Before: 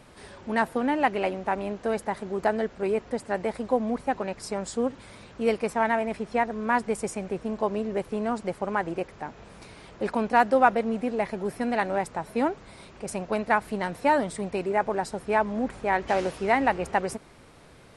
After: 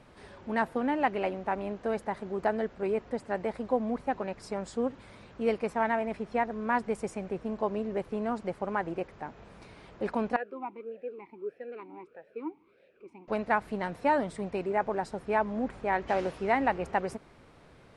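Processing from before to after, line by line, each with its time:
10.36–13.28 vowel sweep e-u 1.6 Hz
whole clip: LPF 3200 Hz 6 dB/oct; gain -3.5 dB

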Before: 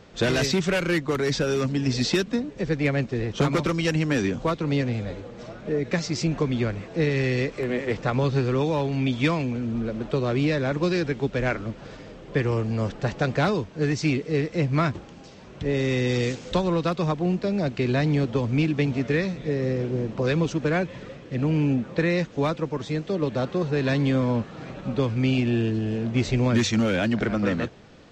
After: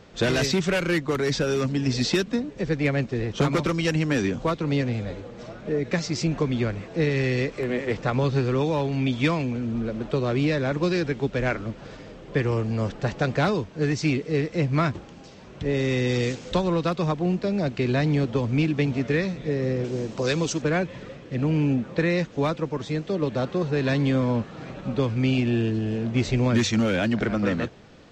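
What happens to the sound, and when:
19.84–20.62 tone controls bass -4 dB, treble +13 dB

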